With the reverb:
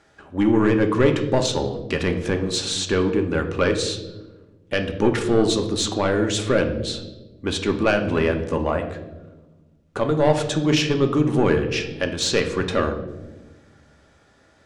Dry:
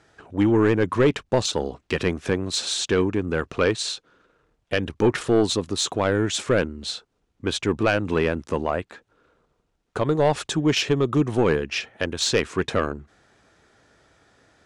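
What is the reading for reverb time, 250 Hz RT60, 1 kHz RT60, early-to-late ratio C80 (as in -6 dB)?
1.2 s, 2.0 s, 0.90 s, 12.0 dB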